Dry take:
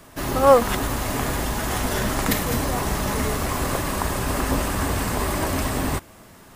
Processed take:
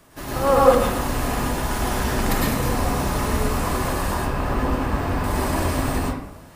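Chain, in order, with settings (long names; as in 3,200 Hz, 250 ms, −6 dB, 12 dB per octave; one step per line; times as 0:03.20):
0:04.14–0:05.24: parametric band 10,000 Hz −13.5 dB 2 octaves
convolution reverb RT60 0.80 s, pre-delay 100 ms, DRR −5.5 dB
level −6 dB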